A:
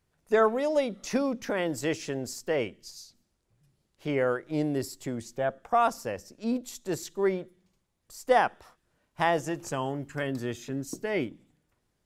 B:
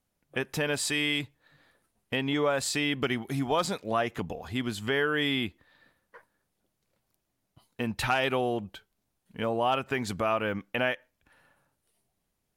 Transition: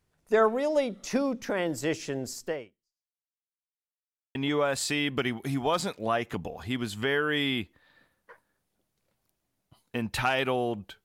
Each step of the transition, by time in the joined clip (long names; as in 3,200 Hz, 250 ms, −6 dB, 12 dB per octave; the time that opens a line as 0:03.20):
A
0:02.48–0:03.46: fade out exponential
0:03.46–0:04.35: silence
0:04.35: continue with B from 0:02.20